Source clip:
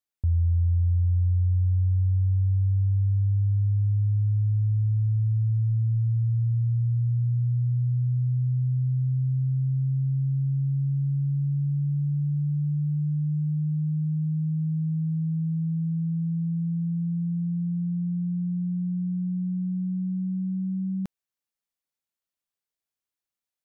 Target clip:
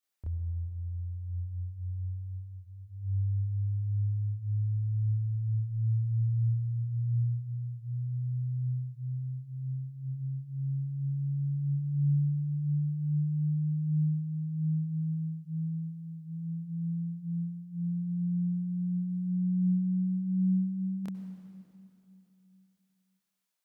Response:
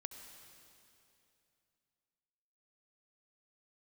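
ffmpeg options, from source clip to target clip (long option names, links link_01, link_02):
-filter_complex "[0:a]lowshelf=frequency=250:gain=-10.5,alimiter=level_in=10.5dB:limit=-24dB:level=0:latency=1:release=142,volume=-10.5dB,asplit=2[link_01][link_02];[1:a]atrim=start_sample=2205,adelay=27[link_03];[link_02][link_03]afir=irnorm=-1:irlink=0,volume=9dB[link_04];[link_01][link_04]amix=inputs=2:normalize=0"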